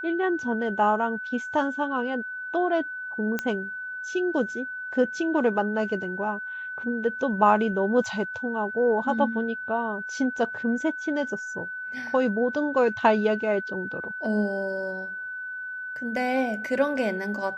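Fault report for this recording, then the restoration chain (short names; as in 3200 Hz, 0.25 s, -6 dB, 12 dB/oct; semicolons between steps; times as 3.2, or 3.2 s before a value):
tone 1500 Hz -32 dBFS
3.39 pop -13 dBFS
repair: de-click; notch 1500 Hz, Q 30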